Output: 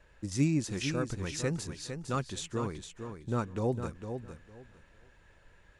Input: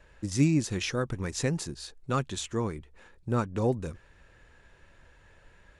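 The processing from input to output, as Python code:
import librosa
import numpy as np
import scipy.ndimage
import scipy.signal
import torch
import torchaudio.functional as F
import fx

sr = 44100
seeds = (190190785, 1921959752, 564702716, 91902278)

y = fx.echo_feedback(x, sr, ms=456, feedback_pct=20, wet_db=-8.0)
y = y * librosa.db_to_amplitude(-4.0)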